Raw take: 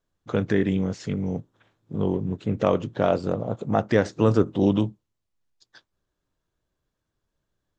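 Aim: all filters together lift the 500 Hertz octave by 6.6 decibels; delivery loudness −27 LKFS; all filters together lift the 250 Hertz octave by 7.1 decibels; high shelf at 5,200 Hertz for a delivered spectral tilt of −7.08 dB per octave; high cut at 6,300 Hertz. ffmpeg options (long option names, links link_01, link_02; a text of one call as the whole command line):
ffmpeg -i in.wav -af "lowpass=6300,equalizer=frequency=250:width_type=o:gain=8,equalizer=frequency=500:width_type=o:gain=5.5,highshelf=frequency=5200:gain=7.5,volume=-8.5dB" out.wav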